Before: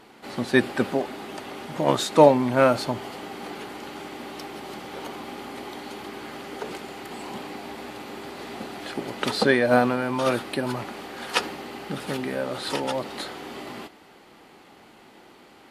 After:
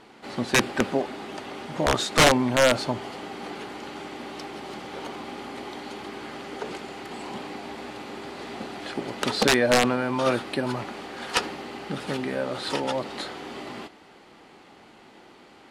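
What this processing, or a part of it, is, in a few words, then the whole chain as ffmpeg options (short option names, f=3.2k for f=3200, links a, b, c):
overflowing digital effects unit: -af "aeval=exprs='(mod(2.99*val(0)+1,2)-1)/2.99':c=same,lowpass=8.6k"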